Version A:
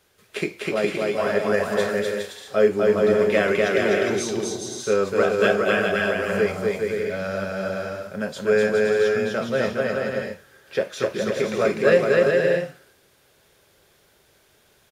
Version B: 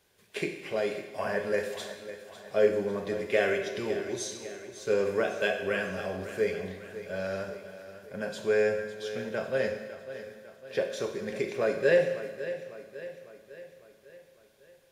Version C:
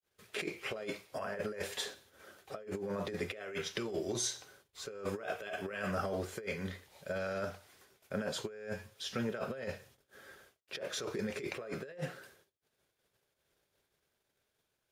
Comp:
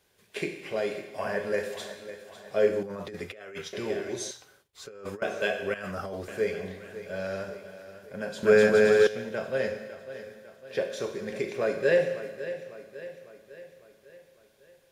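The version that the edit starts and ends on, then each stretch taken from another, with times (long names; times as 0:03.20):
B
0:02.83–0:03.73: punch in from C
0:04.31–0:05.22: punch in from C
0:05.74–0:06.28: punch in from C
0:08.43–0:09.07: punch in from A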